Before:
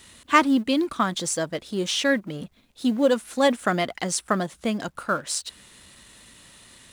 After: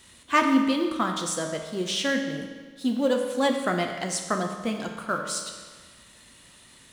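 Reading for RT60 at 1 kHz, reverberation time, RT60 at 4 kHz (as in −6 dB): 1.5 s, 1.5 s, 1.3 s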